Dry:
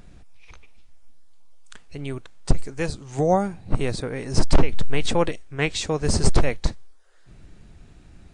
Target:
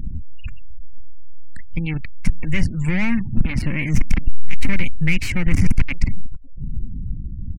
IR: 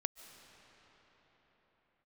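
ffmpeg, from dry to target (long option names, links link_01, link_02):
-filter_complex "[0:a]atempo=1.1,aeval=exprs='(tanh(35.5*val(0)+0.75)-tanh(0.75))/35.5':channel_layout=same,asplit=2[link_01][link_02];[link_02]adelay=539,lowpass=frequency=4200:poles=1,volume=-23dB,asplit=2[link_03][link_04];[link_04]adelay=539,lowpass=frequency=4200:poles=1,volume=0.34[link_05];[link_01][link_03][link_05]amix=inputs=3:normalize=0,afftfilt=real='re*gte(hypot(re,im),0.00398)':imag='im*gte(hypot(re,im),0.00398)':win_size=1024:overlap=0.75,asplit=2[link_06][link_07];[link_07]alimiter=level_in=12dB:limit=-24dB:level=0:latency=1:release=22,volume=-12dB,volume=1dB[link_08];[link_06][link_08]amix=inputs=2:normalize=0,acontrast=73,asetrate=50951,aresample=44100,atempo=0.865537,firequalizer=gain_entry='entry(240,0);entry(430,-16);entry(1300,-8);entry(2200,12);entry(3400,-10);entry(5800,-7);entry(11000,-10)':delay=0.05:min_phase=1,acrossover=split=220|3000[link_09][link_10][link_11];[link_10]acompressor=threshold=-24dB:ratio=10[link_12];[link_09][link_12][link_11]amix=inputs=3:normalize=0,lowshelf=frequency=230:gain=10.5,volume=2dB"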